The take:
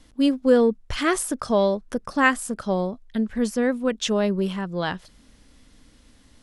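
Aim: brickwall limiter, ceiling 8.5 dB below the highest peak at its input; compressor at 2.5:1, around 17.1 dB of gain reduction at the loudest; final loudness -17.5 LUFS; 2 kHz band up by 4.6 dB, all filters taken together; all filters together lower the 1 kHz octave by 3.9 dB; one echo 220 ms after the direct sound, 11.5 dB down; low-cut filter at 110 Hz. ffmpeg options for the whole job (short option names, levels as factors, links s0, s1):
-af "highpass=110,equalizer=f=1000:t=o:g=-7.5,equalizer=f=2000:t=o:g=8,acompressor=threshold=0.0126:ratio=2.5,alimiter=level_in=1.68:limit=0.0631:level=0:latency=1,volume=0.596,aecho=1:1:220:0.266,volume=10"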